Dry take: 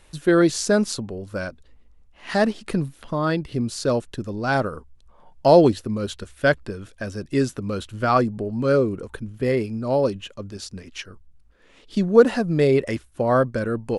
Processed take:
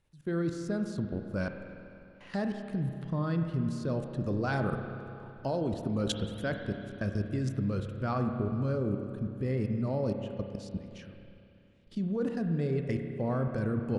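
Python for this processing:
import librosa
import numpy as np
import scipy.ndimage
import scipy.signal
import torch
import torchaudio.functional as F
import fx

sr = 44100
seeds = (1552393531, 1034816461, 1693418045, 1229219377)

y = fx.high_shelf(x, sr, hz=8400.0, db=-5.5)
y = fx.rider(y, sr, range_db=4, speed_s=0.5)
y = fx.hpss(y, sr, part='percussive', gain_db=9, at=(4.14, 6.55))
y = fx.peak_eq(y, sr, hz=140.0, db=11.0, octaves=1.7)
y = fx.level_steps(y, sr, step_db=22)
y = fx.rev_spring(y, sr, rt60_s=2.8, pass_ms=(30, 47), chirp_ms=50, drr_db=5.0)
y = y * librosa.db_to_amplitude(-8.5)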